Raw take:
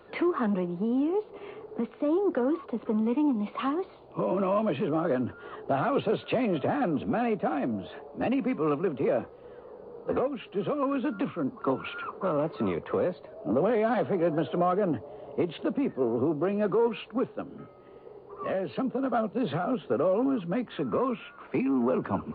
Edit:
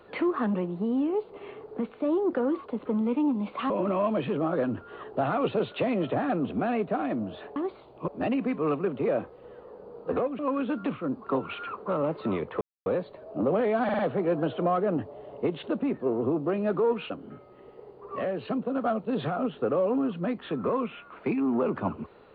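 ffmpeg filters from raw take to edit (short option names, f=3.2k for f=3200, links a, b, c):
-filter_complex "[0:a]asplit=10[a][b][c][d][e][f][g][h][i][j];[a]atrim=end=3.702[k];[b]atrim=start=4.218:end=8.082[l];[c]atrim=start=3.698:end=4.222[m];[d]atrim=start=8.078:end=10.392[n];[e]atrim=start=10.738:end=12.96,asetpts=PTS-STARTPTS,afade=t=out:st=2.218:d=0.004:c=hsin,apad=pad_dur=0.25[o];[f]atrim=start=12.96:end=13.992,asetpts=PTS-STARTPTS,afade=t=in:d=0.004:c=hsin[p];[g]atrim=start=13.938:end=13.992[q];[h]atrim=start=13.938:end=13.992[r];[i]atrim=start=13.938:end=17.052[s];[j]atrim=start=17.378[t];[k][l]acrossfade=d=0.004:c1=hsin:c2=hsin[u];[u][m]acrossfade=d=0.004:c1=hsin:c2=hsin[v];[v][n]acrossfade=d=0.004:c1=hsin:c2=hsin[w];[o][p]concat=n=2:v=0:a=1[x];[w][x]acrossfade=d=0.004:c1=hsin:c2=hsin[y];[y][q]acrossfade=d=0.004:c1=hsin:c2=hsin[z];[z][r]acrossfade=d=0.004:c1=hsin:c2=hsin[aa];[aa][s]acrossfade=d=0.004:c1=hsin:c2=hsin[ab];[ab][t]acrossfade=d=0.004:c1=hsin:c2=hsin"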